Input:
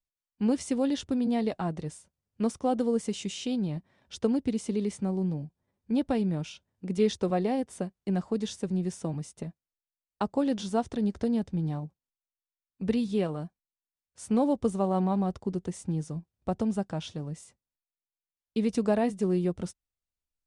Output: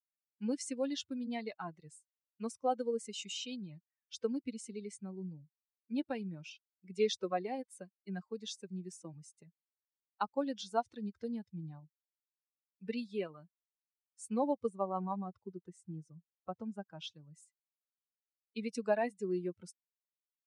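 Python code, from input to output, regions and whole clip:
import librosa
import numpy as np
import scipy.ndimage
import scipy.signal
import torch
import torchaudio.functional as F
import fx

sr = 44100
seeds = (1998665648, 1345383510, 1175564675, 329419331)

y = fx.chain(x, sr, fx.high_shelf(hz=3200.0, db=-7.0),
    fx.notch(hz=2300.0, q=26.0), at=(14.69, 16.99))
y = fx.bin_expand(y, sr, power=2.0)
y = fx.weighting(y, sr, curve='A')
y = y * 10.0 ** (1.0 / 20.0)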